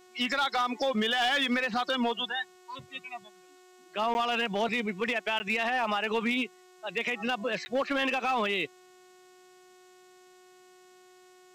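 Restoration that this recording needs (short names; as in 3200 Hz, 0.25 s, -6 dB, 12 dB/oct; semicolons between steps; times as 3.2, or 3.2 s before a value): clip repair -21.5 dBFS; de-hum 366.3 Hz, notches 39; interpolate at 4.14/5.39/7.65, 10 ms; denoiser 20 dB, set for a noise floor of -57 dBFS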